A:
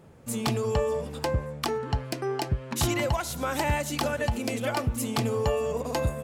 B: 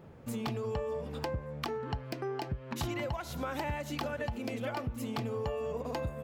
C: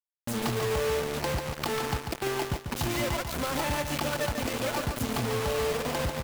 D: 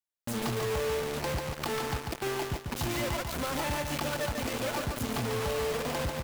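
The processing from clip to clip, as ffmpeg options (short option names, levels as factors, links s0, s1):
-af "equalizer=f=9100:w=0.73:g=-12.5,acompressor=threshold=0.0178:ratio=3"
-filter_complex "[0:a]acrusher=bits=5:mix=0:aa=0.000001,asplit=2[s0][s1];[s1]aecho=0:1:143|286|429|572:0.501|0.14|0.0393|0.011[s2];[s0][s2]amix=inputs=2:normalize=0,volume=1.58"
-af "asoftclip=type=tanh:threshold=0.0562"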